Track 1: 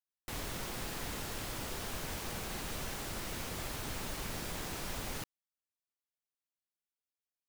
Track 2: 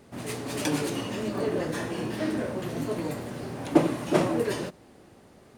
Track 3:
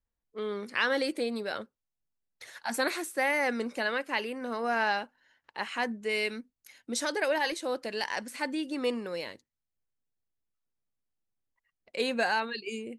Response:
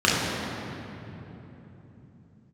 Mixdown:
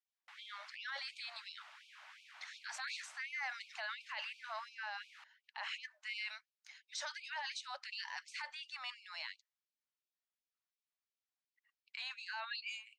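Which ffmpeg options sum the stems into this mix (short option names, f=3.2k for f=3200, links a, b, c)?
-filter_complex "[0:a]lowpass=2.2k,equalizer=f=400:t=o:w=2.4:g=-12.5,volume=-5dB[a];[2:a]lowpass=f=6k:w=0.5412,lowpass=f=6k:w=1.3066,lowshelf=f=500:g=-4.5,volume=-1dB[b];[a][b]amix=inputs=2:normalize=0,equalizer=f=440:w=1.8:g=-11.5,alimiter=level_in=8.5dB:limit=-24dB:level=0:latency=1:release=13,volume=-8.5dB,volume=0dB,afftfilt=real='re*gte(b*sr/1024,540*pow(2300/540,0.5+0.5*sin(2*PI*2.8*pts/sr)))':imag='im*gte(b*sr/1024,540*pow(2300/540,0.5+0.5*sin(2*PI*2.8*pts/sr)))':win_size=1024:overlap=0.75"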